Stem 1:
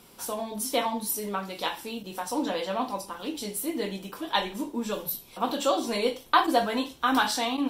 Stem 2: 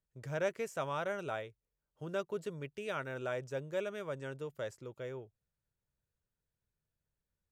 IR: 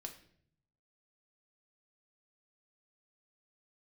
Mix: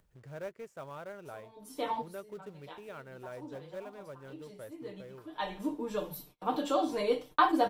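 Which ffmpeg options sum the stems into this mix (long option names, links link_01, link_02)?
-filter_complex "[0:a]agate=range=-37dB:threshold=-44dB:ratio=16:detection=peak,aecho=1:1:6.6:0.66,adelay=1050,volume=-4dB[link_01];[1:a]acrusher=bits=3:mode=log:mix=0:aa=0.000001,volume=-6.5dB,asplit=2[link_02][link_03];[link_03]apad=whole_len=385971[link_04];[link_01][link_04]sidechaincompress=threshold=-58dB:ratio=12:attack=20:release=469[link_05];[link_05][link_02]amix=inputs=2:normalize=0,highshelf=frequency=2400:gain=-10.5,acompressor=mode=upward:threshold=-51dB:ratio=2.5"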